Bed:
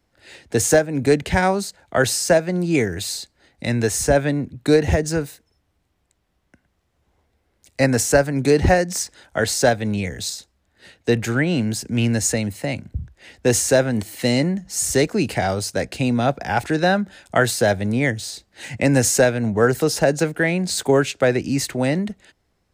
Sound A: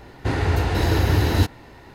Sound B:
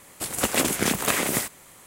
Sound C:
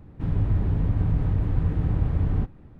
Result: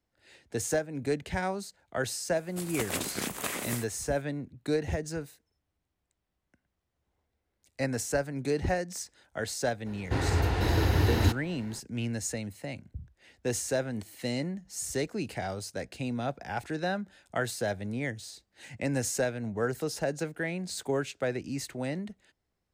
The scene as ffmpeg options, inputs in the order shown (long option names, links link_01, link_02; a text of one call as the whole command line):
ffmpeg -i bed.wav -i cue0.wav -i cue1.wav -filter_complex "[0:a]volume=-13.5dB[link_01];[2:a]atrim=end=1.86,asetpts=PTS-STARTPTS,volume=-10.5dB,afade=type=in:duration=0.004:curve=hsin,afade=type=out:start_time=1.856:duration=0.004:curve=hsin,adelay=2360[link_02];[1:a]atrim=end=1.94,asetpts=PTS-STARTPTS,volume=-6dB,afade=type=in:duration=0.004:curve=hsin,afade=type=out:start_time=1.936:duration=0.004:curve=hsin,adelay=434826S[link_03];[link_01][link_02][link_03]amix=inputs=3:normalize=0" out.wav